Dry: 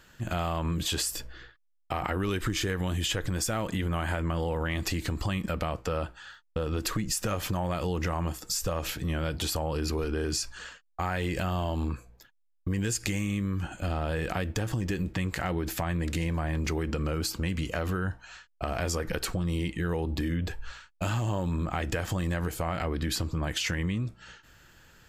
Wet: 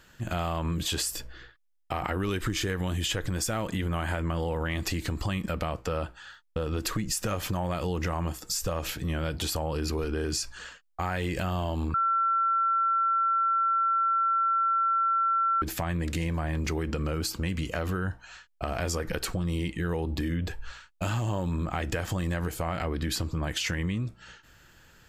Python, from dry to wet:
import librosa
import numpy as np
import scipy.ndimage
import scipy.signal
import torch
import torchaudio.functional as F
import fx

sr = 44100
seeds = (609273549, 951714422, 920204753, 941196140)

y = fx.edit(x, sr, fx.bleep(start_s=11.94, length_s=3.68, hz=1350.0, db=-22.0), tone=tone)